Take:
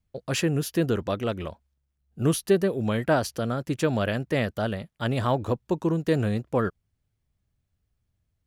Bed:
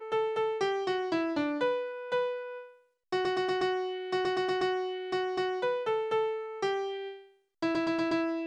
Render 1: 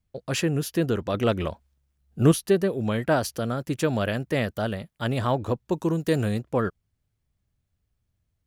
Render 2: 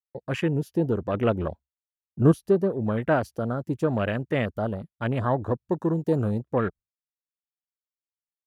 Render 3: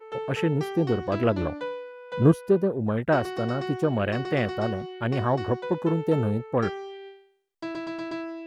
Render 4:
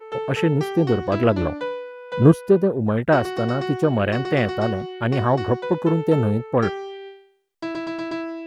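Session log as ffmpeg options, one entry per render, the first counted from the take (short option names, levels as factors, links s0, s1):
-filter_complex "[0:a]asettb=1/sr,asplit=3[s0][s1][s2];[s0]atrim=end=1.144[s3];[s1]atrim=start=1.14:end=2.32,asetpts=PTS-STARTPTS,afade=t=in:d=0.004:c=qsin,afade=t=out:st=1.176:d=0.004:c=qsin,acontrast=35[s4];[s2]atrim=start=2.316[s5];[s3][s4]acrossfade=d=0.004:c1=hsin:c2=qsin[s6];[s6][s5]acrossfade=d=0.004:c1=qsin:c2=hsin,asettb=1/sr,asplit=3[s7][s8][s9];[s7]atrim=end=3.114[s10];[s8]atrim=start=3.11:end=5.18,asetpts=PTS-STARTPTS,afade=t=in:d=0.004:c=qsin,afade=t=out:st=2.066:d=0.004:c=qsin,highshelf=f=9700:g=6[s11];[s9]atrim=start=5.176[s12];[s10][s11]acrossfade=d=0.004:c1=hsin:c2=qsin[s13];[s13][s12]acrossfade=d=0.004:c1=qsin:c2=hsin,asettb=1/sr,asplit=3[s14][s15][s16];[s14]atrim=end=5.724[s17];[s15]atrim=start=5.72:end=6.39,asetpts=PTS-STARTPTS,afade=t=in:d=0.004:c=qsin,afade=t=out:st=0.666:d=0.004:c=qsin,highshelf=f=5800:g=9.5[s18];[s16]atrim=start=6.386[s19];[s17][s18]acrossfade=d=0.004:c1=hsin:c2=qsin[s20];[s20][s19]acrossfade=d=0.004:c1=qsin:c2=hsin"
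-af "afwtdn=0.0224,agate=range=0.0224:threshold=0.01:ratio=3:detection=peak"
-filter_complex "[1:a]volume=0.631[s0];[0:a][s0]amix=inputs=2:normalize=0"
-af "volume=1.78"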